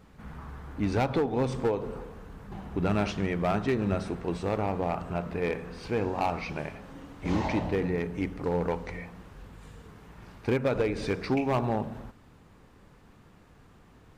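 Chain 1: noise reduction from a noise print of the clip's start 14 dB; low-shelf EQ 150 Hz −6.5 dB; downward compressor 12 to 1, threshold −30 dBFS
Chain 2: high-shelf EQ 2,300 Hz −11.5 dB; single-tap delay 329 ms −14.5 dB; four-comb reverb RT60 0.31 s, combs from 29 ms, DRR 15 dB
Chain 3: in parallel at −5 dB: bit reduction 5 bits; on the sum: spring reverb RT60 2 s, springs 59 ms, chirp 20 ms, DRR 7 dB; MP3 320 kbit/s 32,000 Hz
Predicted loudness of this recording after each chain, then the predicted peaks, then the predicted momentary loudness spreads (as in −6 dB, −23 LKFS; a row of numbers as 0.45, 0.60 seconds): −36.5, −30.5, −25.5 LKFS; −20.5, −17.5, −11.5 dBFS; 10, 18, 17 LU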